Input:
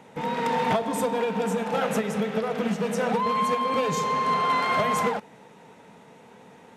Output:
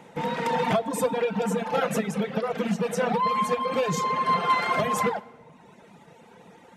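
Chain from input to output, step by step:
rectangular room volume 2,800 cubic metres, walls mixed, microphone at 0.82 metres
reverb reduction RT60 1.1 s
level +1 dB

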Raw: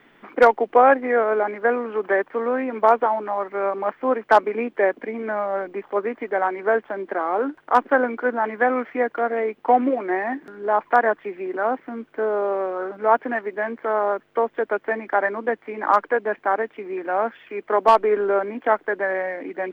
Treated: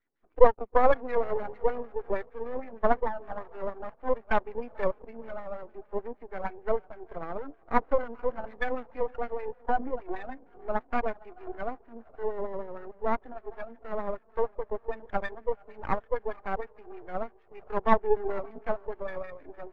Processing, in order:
feedback delay with all-pass diffusion 463 ms, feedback 46%, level −15.5 dB
auto-filter low-pass sine 6.5 Hz 460–3,100 Hz
half-wave rectification
every bin expanded away from the loudest bin 1.5 to 1
level −4.5 dB

